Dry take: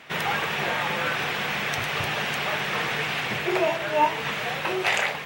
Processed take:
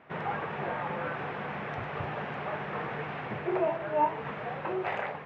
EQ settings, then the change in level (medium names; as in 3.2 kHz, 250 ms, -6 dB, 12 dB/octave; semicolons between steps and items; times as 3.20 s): low-pass 1.2 kHz 12 dB/octave; -4.0 dB